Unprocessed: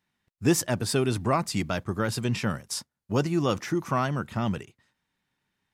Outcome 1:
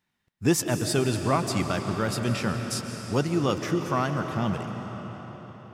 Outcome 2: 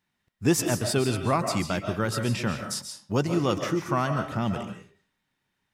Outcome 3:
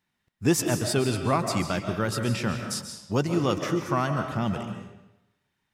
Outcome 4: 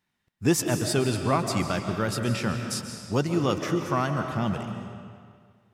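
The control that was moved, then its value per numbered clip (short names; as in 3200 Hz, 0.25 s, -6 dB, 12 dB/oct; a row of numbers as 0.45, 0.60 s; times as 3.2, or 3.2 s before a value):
digital reverb, RT60: 5.1, 0.43, 0.92, 2 s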